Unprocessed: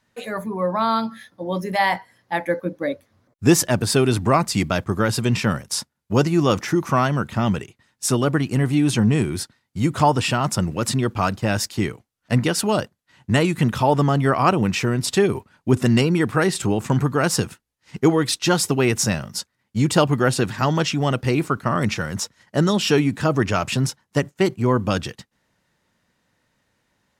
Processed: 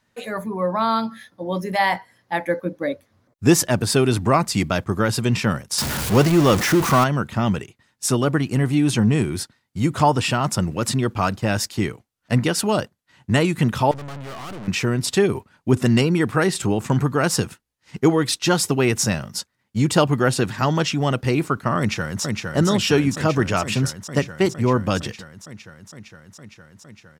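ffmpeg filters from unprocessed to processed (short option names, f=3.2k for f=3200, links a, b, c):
-filter_complex "[0:a]asettb=1/sr,asplit=3[a][b][c];[a]atrim=end=5.784[d];[b]atrim=start=5.78:end=7.04,asetpts=PTS-STARTPTS,afade=t=in:d=0.004:c=qsin,afade=t=out:st=1.256:d=0.004:c=qsin,aeval=exprs='val(0)+0.5*0.119*sgn(val(0))':c=same[e];[c]atrim=start=7.036[f];[d][e]acrossfade=d=0.004:c1=hsin:c2=qsin[g];[g][f]acrossfade=d=0.004:c1=qsin:c2=hsin,asettb=1/sr,asplit=3[h][i][j];[h]atrim=end=13.914[k];[i]atrim=start=13.91:end=14.68,asetpts=PTS-STARTPTS,afade=t=in:d=0.004:c=qsin,afade=t=out:st=0.766:d=0.004:c=qsin,aeval=exprs='(tanh(44.7*val(0)+0.65)-tanh(0.65))/44.7':c=same[l];[j]atrim=start=14.676[m];[k][l]acrossfade=d=0.004:c1=hsin:c2=qsin[n];[n][m]acrossfade=d=0.004:c1=qsin:c2=hsin,asplit=2[o][p];[p]afade=t=in:st=21.78:d=0.01,afade=t=out:st=22.23:d=0.01,aecho=0:1:460|920|1380|1840|2300|2760|3220|3680|4140|4600|5060|5520:0.668344|0.534675|0.42774|0.342192|0.273754|0.219003|0.175202|0.140162|0.11213|0.0897036|0.0717629|0.0574103[q];[o][q]amix=inputs=2:normalize=0"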